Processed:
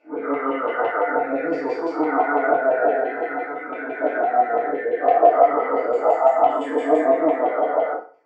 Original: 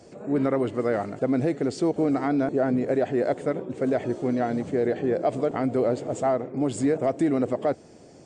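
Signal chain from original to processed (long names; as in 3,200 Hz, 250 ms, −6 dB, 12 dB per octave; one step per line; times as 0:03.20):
every bin's largest magnitude spread in time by 480 ms
0:03.02–0:04.02: parametric band 600 Hz −11.5 dB 0.57 octaves
auto-filter band-pass saw down 5.9 Hz 820–2,900 Hz
feedback delay network reverb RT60 0.57 s, low-frequency decay 0.7×, high-frequency decay 0.8×, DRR −4.5 dB
every bin expanded away from the loudest bin 1.5 to 1
level +6.5 dB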